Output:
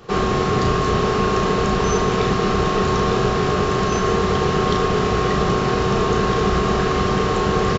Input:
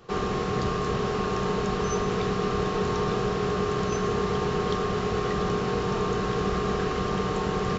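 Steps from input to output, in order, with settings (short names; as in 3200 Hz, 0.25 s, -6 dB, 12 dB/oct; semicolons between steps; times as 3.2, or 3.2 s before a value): doubler 35 ms -5.5 dB; gain +8 dB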